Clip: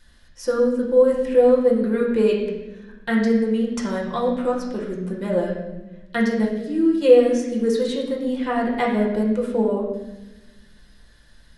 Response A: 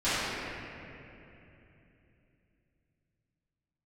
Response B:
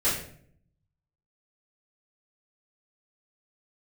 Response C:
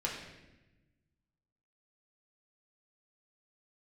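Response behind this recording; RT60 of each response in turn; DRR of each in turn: C; 3.0 s, 0.60 s, 1.0 s; -17.5 dB, -12.0 dB, -3.5 dB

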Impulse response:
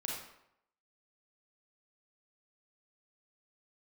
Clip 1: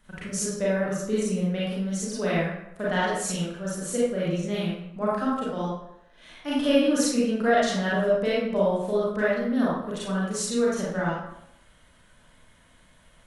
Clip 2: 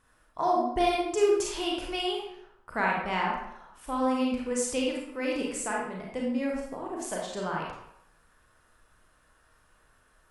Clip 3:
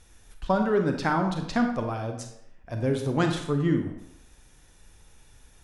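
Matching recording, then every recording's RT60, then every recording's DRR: 2; 0.80 s, 0.80 s, 0.80 s; -8.0 dB, -3.0 dB, 4.0 dB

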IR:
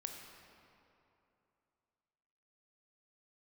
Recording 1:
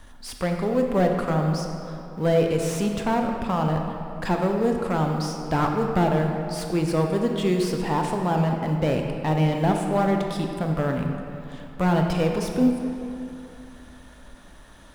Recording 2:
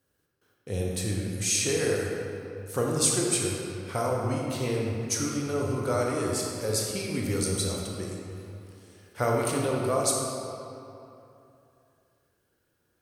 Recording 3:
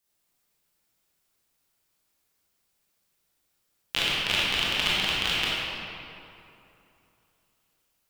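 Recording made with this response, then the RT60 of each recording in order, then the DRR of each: 1; 2.9 s, 2.9 s, 2.9 s; 2.5 dB, -2.0 dB, -8.5 dB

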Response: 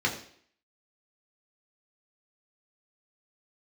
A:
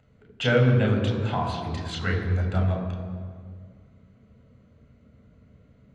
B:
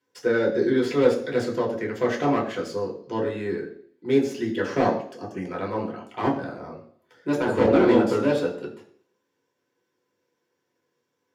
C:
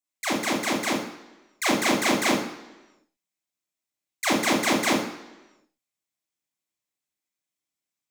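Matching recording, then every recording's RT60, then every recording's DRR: B; 1.9 s, 0.60 s, 1.1 s; 0.0 dB, -2.0 dB, -6.0 dB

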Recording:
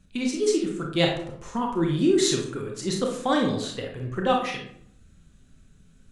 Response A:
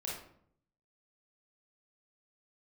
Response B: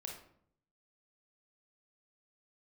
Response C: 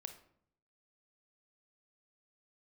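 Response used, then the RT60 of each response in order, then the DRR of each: B; 0.65 s, 0.65 s, 0.65 s; -4.5 dB, 0.5 dB, 7.5 dB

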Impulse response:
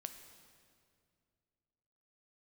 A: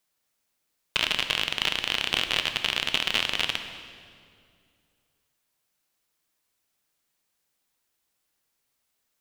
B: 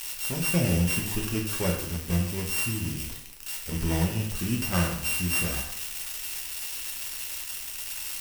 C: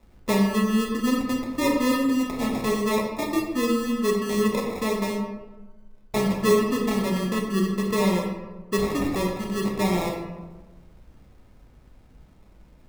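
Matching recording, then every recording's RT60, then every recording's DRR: A; 2.3 s, 0.75 s, 1.2 s; 7.0 dB, -1.0 dB, -0.5 dB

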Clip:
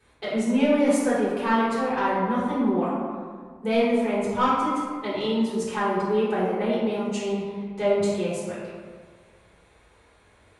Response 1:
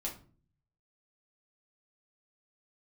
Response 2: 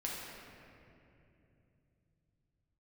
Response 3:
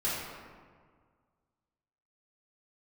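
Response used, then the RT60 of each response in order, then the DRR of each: 3; 0.40 s, 2.8 s, 1.8 s; -2.5 dB, -5.0 dB, -10.0 dB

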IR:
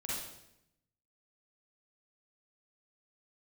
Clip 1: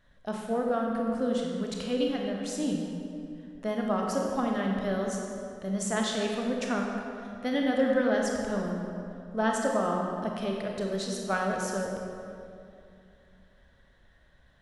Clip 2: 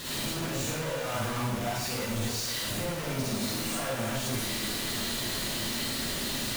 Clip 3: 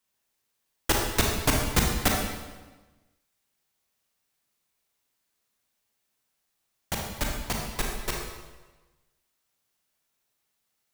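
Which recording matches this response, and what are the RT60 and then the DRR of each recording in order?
2; 2.6 s, 0.80 s, 1.2 s; -0.5 dB, -7.5 dB, -0.5 dB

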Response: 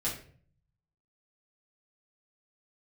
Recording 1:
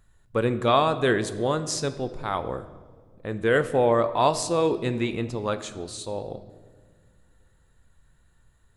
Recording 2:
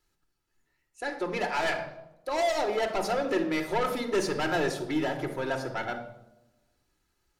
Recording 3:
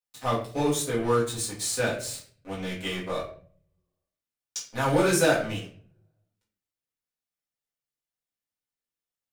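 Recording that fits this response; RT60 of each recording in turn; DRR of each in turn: 3; no single decay rate, 0.90 s, 0.50 s; 10.5 dB, 3.5 dB, -8.0 dB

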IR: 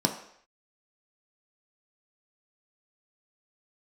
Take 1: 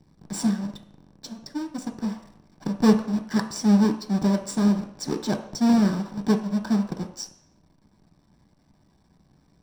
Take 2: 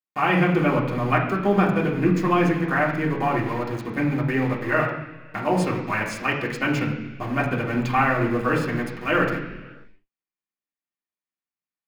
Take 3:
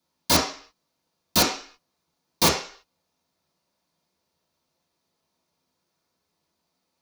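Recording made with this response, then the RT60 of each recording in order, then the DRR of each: 1; no single decay rate, no single decay rate, 0.45 s; 3.0 dB, -5.0 dB, -10.5 dB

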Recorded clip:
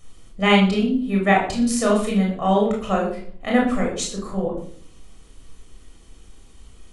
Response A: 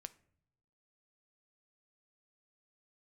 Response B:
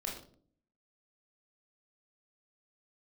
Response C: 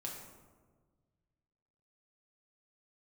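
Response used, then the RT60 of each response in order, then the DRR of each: B; no single decay rate, 0.55 s, 1.5 s; 12.0 dB, -2.5 dB, -2.5 dB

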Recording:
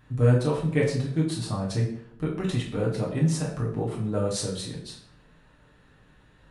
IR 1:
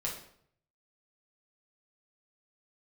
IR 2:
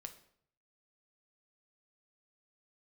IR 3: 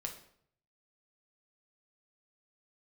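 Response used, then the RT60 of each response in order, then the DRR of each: 1; 0.65 s, 0.65 s, 0.65 s; -4.0 dB, 6.0 dB, 2.0 dB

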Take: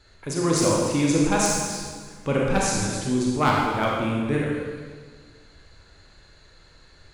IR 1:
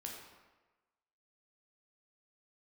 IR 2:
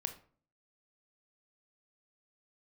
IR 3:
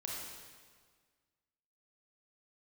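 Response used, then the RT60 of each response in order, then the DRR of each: 3; 1.2 s, 0.45 s, 1.7 s; -1.0 dB, 7.0 dB, -3.5 dB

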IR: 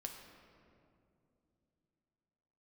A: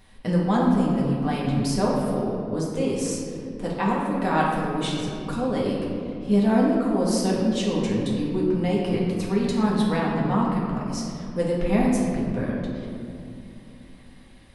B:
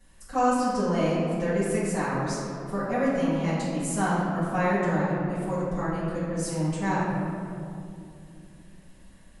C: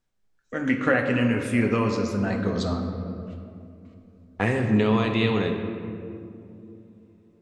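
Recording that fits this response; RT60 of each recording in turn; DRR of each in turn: C; 2.6 s, 2.6 s, 2.7 s; -5.0 dB, -12.0 dB, 2.0 dB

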